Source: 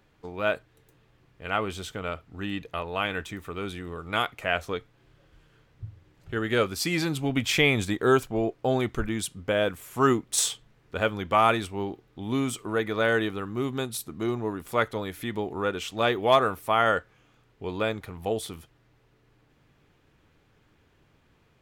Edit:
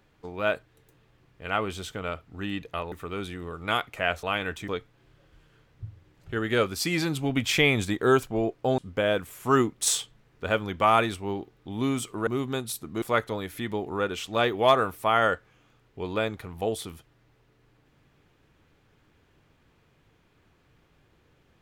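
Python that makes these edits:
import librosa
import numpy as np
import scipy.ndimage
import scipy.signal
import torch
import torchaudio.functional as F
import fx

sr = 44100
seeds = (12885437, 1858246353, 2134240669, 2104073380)

y = fx.edit(x, sr, fx.move(start_s=2.92, length_s=0.45, to_s=4.68),
    fx.cut(start_s=8.78, length_s=0.51),
    fx.cut(start_s=12.78, length_s=0.74),
    fx.cut(start_s=14.27, length_s=0.39), tone=tone)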